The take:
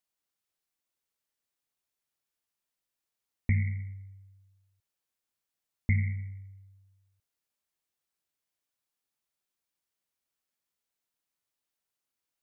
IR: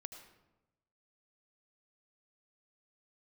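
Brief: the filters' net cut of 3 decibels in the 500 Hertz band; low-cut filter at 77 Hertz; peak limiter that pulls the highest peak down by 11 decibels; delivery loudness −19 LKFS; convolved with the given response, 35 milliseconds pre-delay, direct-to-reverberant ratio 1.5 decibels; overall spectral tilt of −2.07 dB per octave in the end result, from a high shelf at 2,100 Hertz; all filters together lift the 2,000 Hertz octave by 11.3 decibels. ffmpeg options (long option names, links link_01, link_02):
-filter_complex "[0:a]highpass=77,equalizer=frequency=500:width_type=o:gain=-5,equalizer=frequency=2000:width_type=o:gain=8.5,highshelf=frequency=2100:gain=6.5,alimiter=limit=-21.5dB:level=0:latency=1,asplit=2[link_01][link_02];[1:a]atrim=start_sample=2205,adelay=35[link_03];[link_02][link_03]afir=irnorm=-1:irlink=0,volume=2.5dB[link_04];[link_01][link_04]amix=inputs=2:normalize=0,volume=15.5dB"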